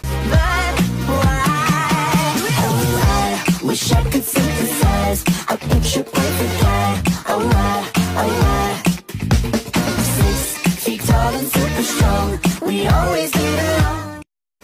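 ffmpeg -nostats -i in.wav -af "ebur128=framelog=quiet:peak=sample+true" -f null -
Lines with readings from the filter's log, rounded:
Integrated loudness:
  I:         -17.1 LUFS
  Threshold: -27.2 LUFS
Loudness range:
  LRA:         1.4 LU
  Threshold: -37.2 LUFS
  LRA low:   -17.8 LUFS
  LRA high:  -16.4 LUFS
Sample peak:
  Peak:       -4.5 dBFS
True peak:
  Peak:       -4.4 dBFS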